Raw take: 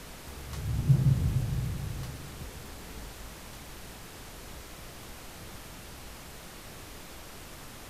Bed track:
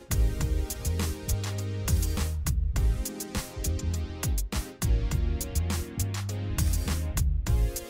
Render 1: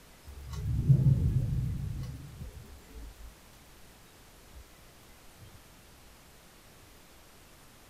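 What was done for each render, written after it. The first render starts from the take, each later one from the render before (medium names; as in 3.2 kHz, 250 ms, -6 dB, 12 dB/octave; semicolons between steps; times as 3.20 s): noise print and reduce 10 dB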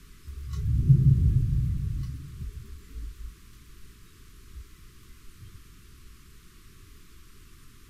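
elliptic band-stop 410–1100 Hz, stop band 40 dB; bass shelf 120 Hz +10.5 dB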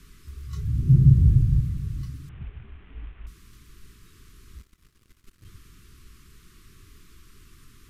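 0.92–1.61 s: bass shelf 240 Hz +6.5 dB; 2.29–3.27 s: CVSD coder 16 kbps; 4.58–5.45 s: power-law waveshaper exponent 2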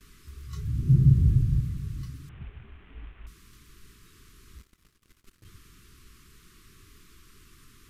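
gate with hold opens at -46 dBFS; bass shelf 180 Hz -5 dB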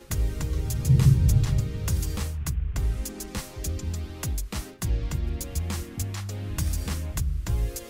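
add bed track -1 dB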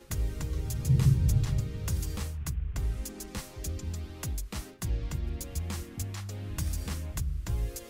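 trim -5 dB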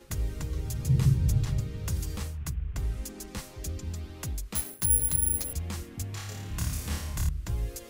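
4.55–5.53 s: careless resampling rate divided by 4×, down none, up zero stuff; 6.10–7.29 s: flutter echo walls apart 4.8 m, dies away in 0.8 s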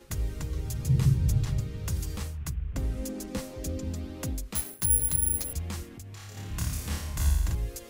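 2.72–4.51 s: small resonant body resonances 260/520 Hz, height 12 dB, ringing for 35 ms; 5.87–6.37 s: compression 5:1, threshold -40 dBFS; 7.14–7.55 s: flutter echo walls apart 7.3 m, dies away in 1.1 s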